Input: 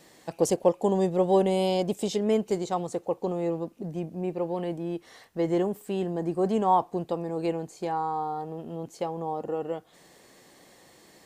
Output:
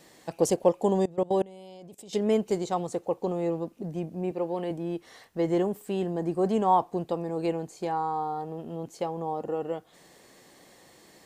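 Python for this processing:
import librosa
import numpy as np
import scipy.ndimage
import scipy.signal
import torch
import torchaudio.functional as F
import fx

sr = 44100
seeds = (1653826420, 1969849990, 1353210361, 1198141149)

y = fx.level_steps(x, sr, step_db=23, at=(1.02, 2.13))
y = fx.highpass(y, sr, hz=180.0, slope=12, at=(4.31, 4.71))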